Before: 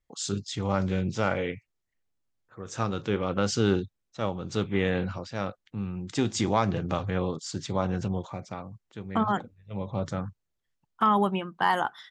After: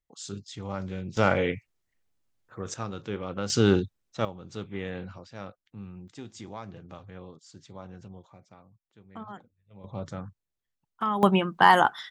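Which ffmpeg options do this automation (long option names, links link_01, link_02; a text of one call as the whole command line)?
ffmpeg -i in.wav -af "asetnsamples=nb_out_samples=441:pad=0,asendcmd='1.17 volume volume 4dB;2.74 volume volume -6dB;3.5 volume volume 3dB;4.25 volume volume -9dB;6.08 volume volume -16dB;9.84 volume volume -5.5dB;11.23 volume volume 7dB',volume=-7.5dB" out.wav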